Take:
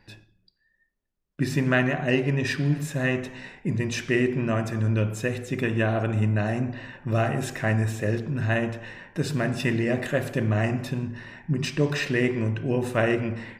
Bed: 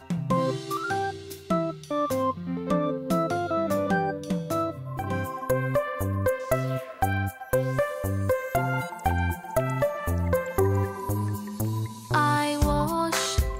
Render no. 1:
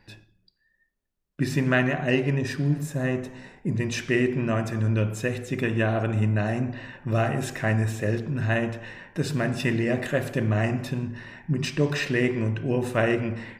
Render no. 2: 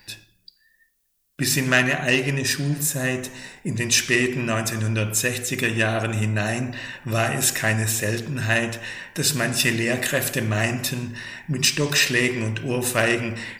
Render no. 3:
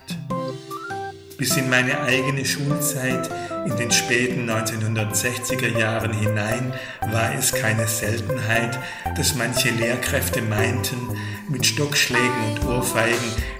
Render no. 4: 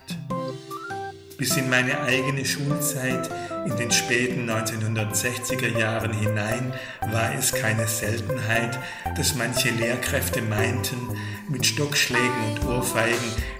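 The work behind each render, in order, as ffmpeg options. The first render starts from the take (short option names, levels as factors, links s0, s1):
-filter_complex "[0:a]asettb=1/sr,asplit=3[s0][s1][s2];[s0]atrim=end=2.384[s3];[s1]atrim=start=2.38:end=3.76,asetpts=PTS-STARTPTS,afade=t=in:d=0.004:c=qsin,afade=t=out:st=1.376:d=0.004:c=qsin,equalizer=f=2700:w=0.72:g=-8[s4];[s2]atrim=start=3.756[s5];[s3][s4]acrossfade=d=0.004:c1=hsin:c2=qsin[s6];[s6][s5]acrossfade=d=0.004:c1=qsin:c2=hsin"
-af "asoftclip=type=tanh:threshold=0.251,crystalizer=i=8:c=0"
-filter_complex "[1:a]volume=0.794[s0];[0:a][s0]amix=inputs=2:normalize=0"
-af "volume=0.75"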